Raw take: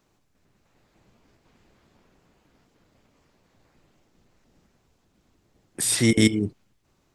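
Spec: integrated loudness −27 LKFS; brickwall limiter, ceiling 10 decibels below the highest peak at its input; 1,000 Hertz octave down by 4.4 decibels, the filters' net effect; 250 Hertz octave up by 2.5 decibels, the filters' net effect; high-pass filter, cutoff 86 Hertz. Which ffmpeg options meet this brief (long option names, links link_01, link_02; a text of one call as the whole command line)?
ffmpeg -i in.wav -af "highpass=86,equalizer=frequency=250:width_type=o:gain=3.5,equalizer=frequency=1000:width_type=o:gain=-6.5,volume=-2dB,alimiter=limit=-16.5dB:level=0:latency=1" out.wav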